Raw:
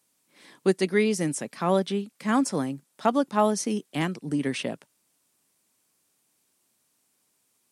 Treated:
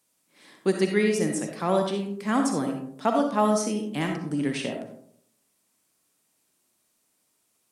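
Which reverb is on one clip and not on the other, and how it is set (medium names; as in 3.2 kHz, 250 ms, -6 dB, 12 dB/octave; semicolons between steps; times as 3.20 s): algorithmic reverb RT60 0.7 s, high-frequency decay 0.35×, pre-delay 20 ms, DRR 3 dB; trim -1.5 dB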